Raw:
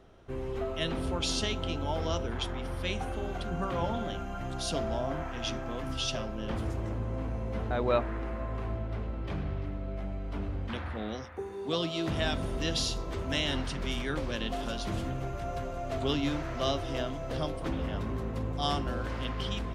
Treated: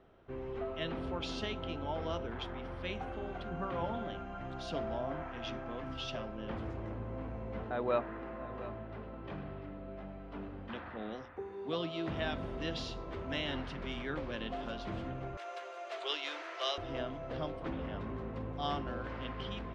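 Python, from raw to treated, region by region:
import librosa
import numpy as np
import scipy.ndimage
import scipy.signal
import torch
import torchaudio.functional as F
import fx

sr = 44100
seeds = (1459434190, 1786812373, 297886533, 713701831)

y = fx.chain(x, sr, fx.peak_eq(hz=69.0, db=-11.5, octaves=0.85),
    fx.notch(hz=2200.0, q=16.0),
    fx.echo_single(ms=708, db=-15.5), at=(7.63, 11.36))
y = fx.chain(y, sr, fx.steep_highpass(hz=310.0, slope=96),
    fx.tilt_eq(slope=4.5), at=(15.37, 16.78))
y = scipy.signal.sosfilt(scipy.signal.butter(2, 2900.0, 'lowpass', fs=sr, output='sos'), y)
y = fx.low_shelf(y, sr, hz=120.0, db=-7.0)
y = y * 10.0 ** (-4.0 / 20.0)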